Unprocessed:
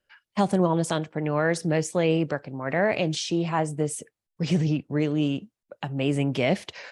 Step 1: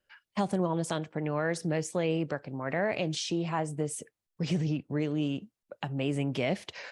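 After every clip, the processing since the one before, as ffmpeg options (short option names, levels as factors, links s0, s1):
-af "acompressor=threshold=0.0251:ratio=1.5,volume=0.841"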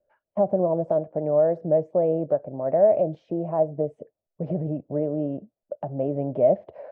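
-af "lowpass=f=620:t=q:w=6.5"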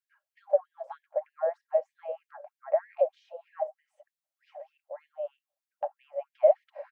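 -af "aecho=1:1:3.7:0.41,afftfilt=real='re*gte(b*sr/1024,510*pow(1700/510,0.5+0.5*sin(2*PI*3.2*pts/sr)))':imag='im*gte(b*sr/1024,510*pow(1700/510,0.5+0.5*sin(2*PI*3.2*pts/sr)))':win_size=1024:overlap=0.75"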